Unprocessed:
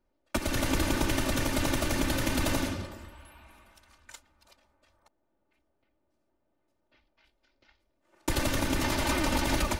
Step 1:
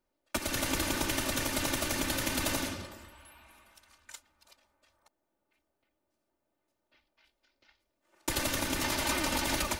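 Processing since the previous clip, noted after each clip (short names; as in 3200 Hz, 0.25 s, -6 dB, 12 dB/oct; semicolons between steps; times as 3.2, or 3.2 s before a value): tilt +1.5 dB/oct; gain -2.5 dB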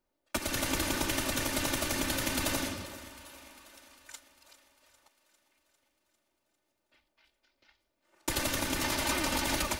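thinning echo 0.4 s, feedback 64%, high-pass 210 Hz, level -17.5 dB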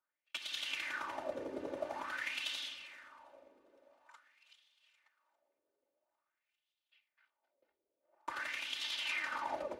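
wah 0.48 Hz 430–3400 Hz, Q 4.1; gain +2.5 dB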